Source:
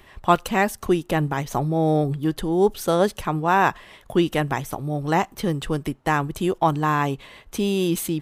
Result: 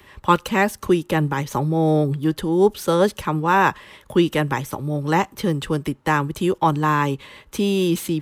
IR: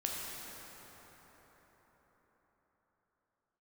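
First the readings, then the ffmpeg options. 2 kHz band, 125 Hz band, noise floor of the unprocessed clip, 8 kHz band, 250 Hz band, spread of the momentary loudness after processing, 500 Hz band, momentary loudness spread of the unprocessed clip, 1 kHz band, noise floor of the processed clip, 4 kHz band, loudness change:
+2.5 dB, +2.5 dB, -52 dBFS, 0.0 dB, +2.5 dB, 7 LU, +2.0 dB, 7 LU, +1.5 dB, -51 dBFS, +2.5 dB, +2.0 dB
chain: -filter_complex "[0:a]asuperstop=centerf=700:order=4:qfactor=5.1,acrossover=split=310|460|5500[a][b][c][d];[d]asoftclip=type=tanh:threshold=-33.5dB[e];[a][b][c][e]amix=inputs=4:normalize=0,highpass=49,volume=2.5dB"

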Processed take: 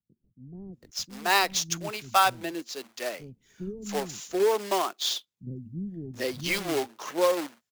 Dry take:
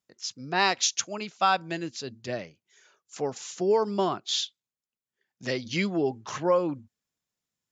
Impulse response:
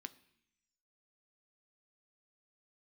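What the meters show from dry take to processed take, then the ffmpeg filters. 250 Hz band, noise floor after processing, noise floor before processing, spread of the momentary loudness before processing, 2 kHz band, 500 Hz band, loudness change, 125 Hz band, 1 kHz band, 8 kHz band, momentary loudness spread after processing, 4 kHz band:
-2.5 dB, -82 dBFS, under -85 dBFS, 12 LU, +1.5 dB, -0.5 dB, 0.0 dB, -1.5 dB, +1.0 dB, n/a, 18 LU, +0.5 dB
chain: -filter_complex "[0:a]acrusher=bits=2:mode=log:mix=0:aa=0.000001,acrossover=split=570[a][b];[a]aeval=exprs='val(0)*(1-0.5/2+0.5/2*cos(2*PI*1.1*n/s))':c=same[c];[b]aeval=exprs='val(0)*(1-0.5/2-0.5/2*cos(2*PI*1.1*n/s))':c=same[d];[c][d]amix=inputs=2:normalize=0,acrossover=split=250[e][f];[f]adelay=730[g];[e][g]amix=inputs=2:normalize=0,volume=2.5dB"

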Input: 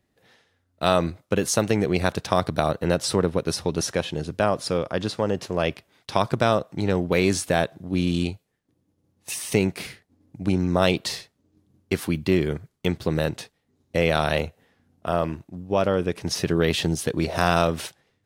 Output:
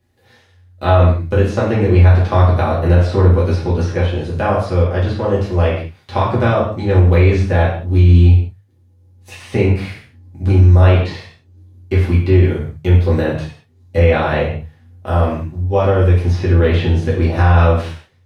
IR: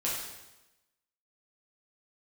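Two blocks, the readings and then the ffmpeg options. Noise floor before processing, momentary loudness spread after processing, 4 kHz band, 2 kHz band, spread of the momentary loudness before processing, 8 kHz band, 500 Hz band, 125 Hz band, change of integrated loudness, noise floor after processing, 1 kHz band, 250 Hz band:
-72 dBFS, 12 LU, -2.0 dB, +5.0 dB, 9 LU, under -10 dB, +6.5 dB, +16.5 dB, +10.0 dB, -52 dBFS, +6.0 dB, +5.5 dB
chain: -filter_complex "[0:a]bandreject=f=50:t=h:w=6,bandreject=f=100:t=h:w=6,bandreject=f=150:t=h:w=6,bandreject=f=200:t=h:w=6,acrossover=split=6600[a][b];[b]acompressor=threshold=-48dB:ratio=4:attack=1:release=60[c];[a][c]amix=inputs=2:normalize=0,equalizer=f=86:w=1.9:g=14.5,acrossover=split=2800[d][e];[e]acompressor=threshold=-49dB:ratio=10[f];[d][f]amix=inputs=2:normalize=0[g];[1:a]atrim=start_sample=2205,afade=t=out:st=0.38:d=0.01,atrim=end_sample=17199,asetrate=70560,aresample=44100[h];[g][h]afir=irnorm=-1:irlink=0,alimiter=level_in=5.5dB:limit=-1dB:release=50:level=0:latency=1,volume=-1dB"

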